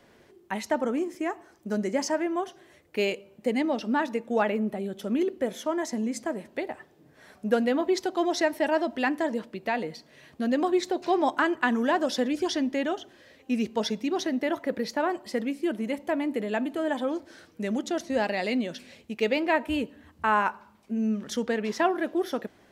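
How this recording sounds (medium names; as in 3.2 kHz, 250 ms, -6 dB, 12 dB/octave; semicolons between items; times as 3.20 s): noise floor -59 dBFS; spectral tilt -3.0 dB/octave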